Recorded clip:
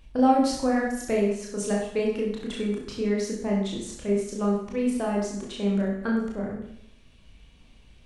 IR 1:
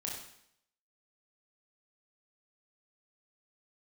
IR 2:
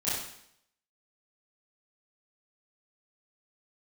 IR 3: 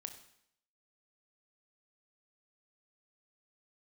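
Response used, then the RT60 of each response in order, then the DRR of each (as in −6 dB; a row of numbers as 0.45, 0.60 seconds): 1; 0.70, 0.70, 0.70 seconds; −3.0, −12.0, 6.5 decibels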